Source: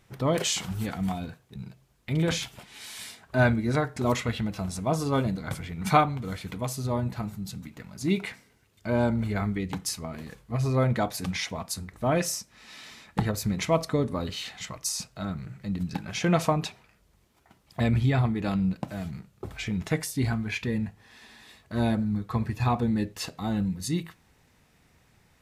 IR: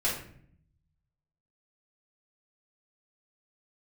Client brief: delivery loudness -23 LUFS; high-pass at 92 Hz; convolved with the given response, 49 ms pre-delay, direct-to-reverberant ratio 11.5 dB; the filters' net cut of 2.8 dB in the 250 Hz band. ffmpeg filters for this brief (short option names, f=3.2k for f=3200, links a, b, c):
-filter_complex "[0:a]highpass=92,equalizer=f=250:t=o:g=-3.5,asplit=2[a][b];[1:a]atrim=start_sample=2205,adelay=49[c];[b][c]afir=irnorm=-1:irlink=0,volume=-20dB[d];[a][d]amix=inputs=2:normalize=0,volume=7dB"